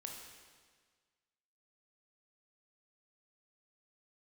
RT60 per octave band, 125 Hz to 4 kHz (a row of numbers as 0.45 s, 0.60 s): 1.6 s, 1.6 s, 1.6 s, 1.6 s, 1.6 s, 1.5 s